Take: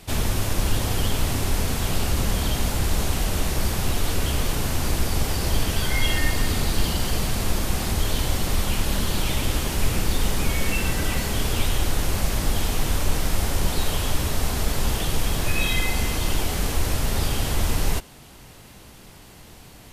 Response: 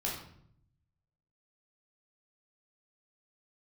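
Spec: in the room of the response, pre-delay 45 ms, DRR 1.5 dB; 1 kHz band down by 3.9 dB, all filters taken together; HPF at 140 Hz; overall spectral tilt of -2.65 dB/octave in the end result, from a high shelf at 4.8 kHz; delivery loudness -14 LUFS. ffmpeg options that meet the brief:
-filter_complex "[0:a]highpass=140,equalizer=f=1000:t=o:g=-5.5,highshelf=f=4800:g=7,asplit=2[s0][s1];[1:a]atrim=start_sample=2205,adelay=45[s2];[s1][s2]afir=irnorm=-1:irlink=0,volume=0.531[s3];[s0][s3]amix=inputs=2:normalize=0,volume=2.51"

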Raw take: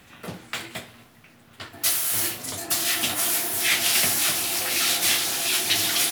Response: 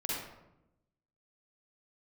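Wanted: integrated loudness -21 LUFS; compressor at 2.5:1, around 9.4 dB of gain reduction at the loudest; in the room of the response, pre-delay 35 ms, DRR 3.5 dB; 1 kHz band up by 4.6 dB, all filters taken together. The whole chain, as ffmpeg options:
-filter_complex "[0:a]equalizer=f=1000:t=o:g=6.5,acompressor=threshold=0.0282:ratio=2.5,asplit=2[s0][s1];[1:a]atrim=start_sample=2205,adelay=35[s2];[s1][s2]afir=irnorm=-1:irlink=0,volume=0.398[s3];[s0][s3]amix=inputs=2:normalize=0,volume=2.11"

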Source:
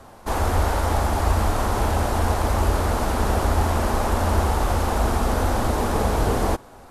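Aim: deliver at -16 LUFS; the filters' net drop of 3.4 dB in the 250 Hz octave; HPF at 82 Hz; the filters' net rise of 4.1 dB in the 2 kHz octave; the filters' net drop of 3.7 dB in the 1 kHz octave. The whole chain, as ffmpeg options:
-af "highpass=82,equalizer=f=250:t=o:g=-4,equalizer=f=1000:t=o:g=-6.5,equalizer=f=2000:t=o:g=8,volume=2.82"

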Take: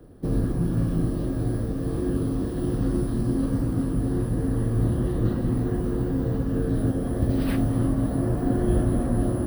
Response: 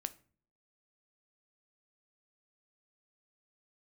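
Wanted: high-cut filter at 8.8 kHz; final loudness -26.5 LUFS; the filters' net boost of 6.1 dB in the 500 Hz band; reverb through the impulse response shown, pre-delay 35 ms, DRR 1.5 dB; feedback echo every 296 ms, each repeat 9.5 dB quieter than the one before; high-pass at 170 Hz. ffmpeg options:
-filter_complex "[0:a]highpass=170,lowpass=8800,equalizer=f=500:t=o:g=8.5,aecho=1:1:296|592|888|1184:0.335|0.111|0.0365|0.012,asplit=2[s0][s1];[1:a]atrim=start_sample=2205,adelay=35[s2];[s1][s2]afir=irnorm=-1:irlink=0,volume=1[s3];[s0][s3]amix=inputs=2:normalize=0,volume=0.668"

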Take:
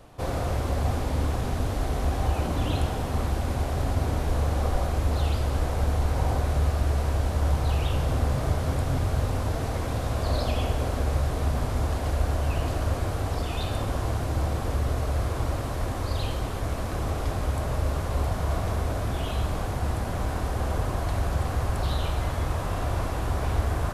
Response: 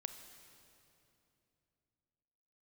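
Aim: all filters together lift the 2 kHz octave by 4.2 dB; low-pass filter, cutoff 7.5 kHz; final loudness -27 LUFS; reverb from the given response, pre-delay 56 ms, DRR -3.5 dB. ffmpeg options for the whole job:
-filter_complex "[0:a]lowpass=7500,equalizer=f=2000:t=o:g=5.5,asplit=2[s0][s1];[1:a]atrim=start_sample=2205,adelay=56[s2];[s1][s2]afir=irnorm=-1:irlink=0,volume=2[s3];[s0][s3]amix=inputs=2:normalize=0,volume=0.501"

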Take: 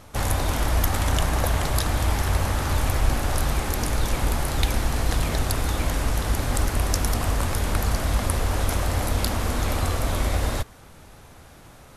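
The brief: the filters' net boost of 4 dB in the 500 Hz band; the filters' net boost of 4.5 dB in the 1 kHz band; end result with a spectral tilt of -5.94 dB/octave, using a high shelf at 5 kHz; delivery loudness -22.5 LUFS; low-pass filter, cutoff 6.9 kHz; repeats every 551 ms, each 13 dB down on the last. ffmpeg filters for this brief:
-af "lowpass=6900,equalizer=f=500:t=o:g=3.5,equalizer=f=1000:t=o:g=5,highshelf=f=5000:g=-8,aecho=1:1:551|1102|1653:0.224|0.0493|0.0108,volume=1.19"

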